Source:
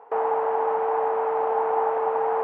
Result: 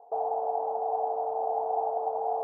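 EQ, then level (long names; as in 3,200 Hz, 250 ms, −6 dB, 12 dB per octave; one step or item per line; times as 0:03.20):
transistor ladder low-pass 750 Hz, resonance 80%
high-frequency loss of the air 390 metres
0.0 dB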